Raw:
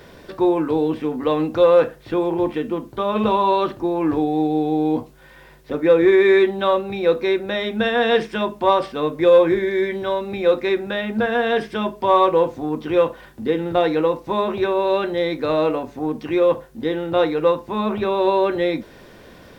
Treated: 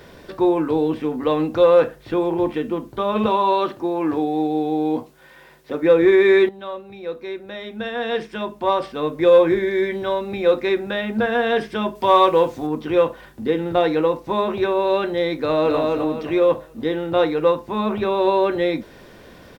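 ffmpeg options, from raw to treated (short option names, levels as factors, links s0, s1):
-filter_complex "[0:a]asettb=1/sr,asplit=3[s0][s1][s2];[s0]atrim=end=3.264[s3];[s1]atrim=start=3.26:end=5.82,asetpts=PTS-STARTPTS,afade=t=in:d=0.004:c=qsin,afade=t=out:st=2.556:d=0.004:c=qsin,highpass=f=220:p=1[s4];[s2]atrim=start=5.816[s5];[s3][s4]acrossfade=d=0.004:c1=hsin:c2=qsin[s6];[s6][s5]acrossfade=d=0.004:c1=qsin:c2=hsin,asettb=1/sr,asplit=3[s7][s8][s9];[s7]atrim=end=11.954[s10];[s8]atrim=start=11.95:end=12.67,asetpts=PTS-STARTPTS,afade=t=in:d=0.004:c=qsin,afade=t=out:st=0.716:d=0.004:c=qsin,highshelf=f=2000:g=7[s11];[s9]atrim=start=12.666[s12];[s10][s11]acrossfade=d=0.004:c1=hsin:c2=qsin[s13];[s13][s12]acrossfade=d=0.004:c1=qsin:c2=hsin,asplit=2[s14][s15];[s15]afade=t=in:st=15.38:d=0.01,afade=t=out:st=15.78:d=0.01,aecho=0:1:260|520|780|1040|1300:0.749894|0.262463|0.091862|0.0321517|0.0112531[s16];[s14][s16]amix=inputs=2:normalize=0,asplit=2[s17][s18];[s17]atrim=end=6.49,asetpts=PTS-STARTPTS,afade=t=out:st=6.486:d=0.004:c=hsin:silence=0.223872[s19];[s18]atrim=start=6.49,asetpts=PTS-STARTPTS,afade=t=in:d=2.83:c=qua:silence=0.223872[s20];[s19][s20]concat=n=2:v=0:a=1"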